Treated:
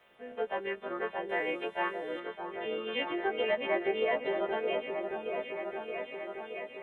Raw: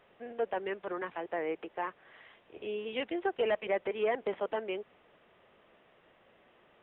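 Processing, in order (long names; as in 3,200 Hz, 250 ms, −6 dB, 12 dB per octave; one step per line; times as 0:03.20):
every partial snapped to a pitch grid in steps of 2 semitones
0:01.29–0:02.20: high-shelf EQ 2,400 Hz +12 dB
on a send: echo whose low-pass opens from repeat to repeat 622 ms, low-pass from 750 Hz, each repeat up 1 octave, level −3 dB
on the sum: Opus 24 kbit/s 48,000 Hz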